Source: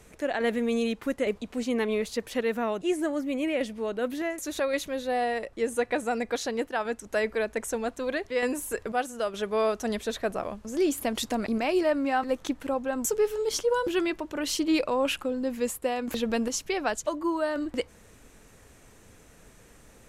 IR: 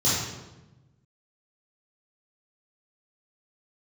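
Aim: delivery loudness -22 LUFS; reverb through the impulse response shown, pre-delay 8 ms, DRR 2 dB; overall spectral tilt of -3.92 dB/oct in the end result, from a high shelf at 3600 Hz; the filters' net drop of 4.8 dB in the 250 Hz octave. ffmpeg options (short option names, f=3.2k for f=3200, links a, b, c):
-filter_complex "[0:a]equalizer=f=250:t=o:g=-6,highshelf=f=3.6k:g=-6,asplit=2[a][b];[1:a]atrim=start_sample=2205,adelay=8[c];[b][c]afir=irnorm=-1:irlink=0,volume=-16dB[d];[a][d]amix=inputs=2:normalize=0,volume=6dB"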